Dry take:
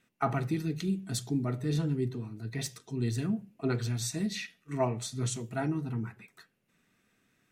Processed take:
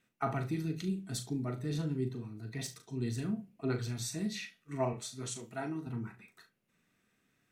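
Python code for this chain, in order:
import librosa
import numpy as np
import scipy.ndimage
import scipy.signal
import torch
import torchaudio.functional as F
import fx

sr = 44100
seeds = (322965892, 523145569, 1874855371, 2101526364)

y = fx.highpass(x, sr, hz=310.0, slope=6, at=(4.93, 5.87))
y = fx.room_early_taps(y, sr, ms=(38, 69), db=(-8.5, -17.5))
y = y * 10.0 ** (-4.5 / 20.0)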